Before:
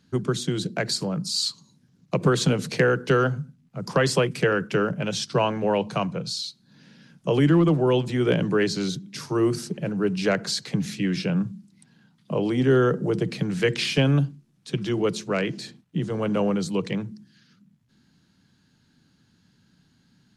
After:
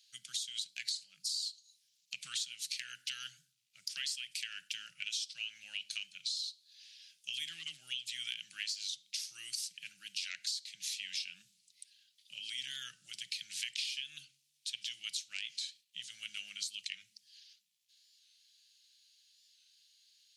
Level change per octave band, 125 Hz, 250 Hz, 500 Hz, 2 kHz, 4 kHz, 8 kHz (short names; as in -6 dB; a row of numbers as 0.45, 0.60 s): under -40 dB, under -40 dB, under -40 dB, -14.5 dB, -5.5 dB, -5.5 dB